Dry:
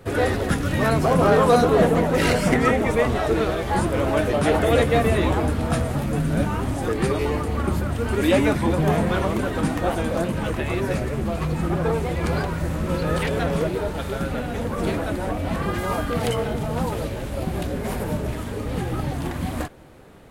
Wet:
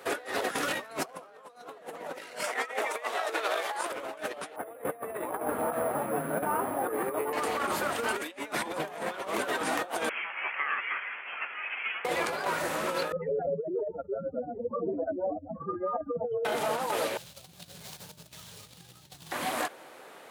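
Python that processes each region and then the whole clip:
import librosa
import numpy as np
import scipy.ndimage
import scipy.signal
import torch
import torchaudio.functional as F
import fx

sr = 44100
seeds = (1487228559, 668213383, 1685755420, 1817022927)

y = fx.chain(x, sr, fx.highpass(hz=510.0, slope=12),
    fx.over_compress(threshold_db=-30.0, ratio=-0.5), at=(2.43, 3.92))
y = fx.chain(y, sr, fx.lowpass(hz=1200.0, slope=12),
    fx.resample_bad(factor=4, down='filtered', up='hold'), at=(4.56, 7.33))
y = fx.chain(y, sr, fx.highpass(hz=1400.0, slope=24),
    fx.freq_invert(carrier_hz=3800), at=(10.09, 12.05))
y = fx.chain(y, sr, fx.spec_expand(power=3.6),
    fx.bessel_lowpass(hz=910.0, order=2), at=(13.12, 16.45))
y = fx.chain(y, sr, fx.median_filter(points=9),
    fx.curve_eq(hz=(170.0, 250.0, 2000.0, 4000.0), db=(0, -29, -21, -2)),
    fx.over_compress(threshold_db=-31.0, ratio=-0.5), at=(17.17, 19.32))
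y = scipy.signal.sosfilt(scipy.signal.butter(2, 590.0, 'highpass', fs=sr, output='sos'), y)
y = fx.over_compress(y, sr, threshold_db=-32.0, ratio=-0.5)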